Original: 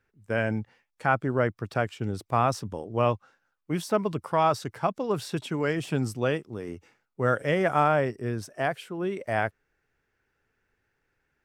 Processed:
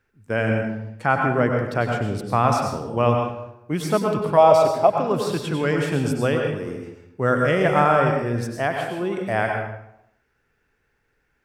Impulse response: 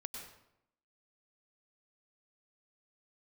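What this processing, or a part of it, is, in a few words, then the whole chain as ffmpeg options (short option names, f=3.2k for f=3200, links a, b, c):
bathroom: -filter_complex "[1:a]atrim=start_sample=2205[a];[0:a][a]afir=irnorm=-1:irlink=0,asettb=1/sr,asplit=3[b][c][d];[b]atrim=end=4.374[e];[c]atrim=start=4.37:end=4.98,asetpts=PTS-STARTPTS,afade=t=in:d=0.004:c=qsin,afade=t=out:st=0.606:d=0.004:c=qsin,equalizer=f=160:t=o:w=0.67:g=-7,equalizer=f=630:t=o:w=0.67:g=11,equalizer=f=1.6k:t=o:w=0.67:g=-8[f];[d]atrim=start=4.976[g];[e][f]acrossfade=d=0.004:c1=hsin:c2=qsin[h];[h][g]acrossfade=d=0.004:c1=qsin:c2=hsin,volume=8dB"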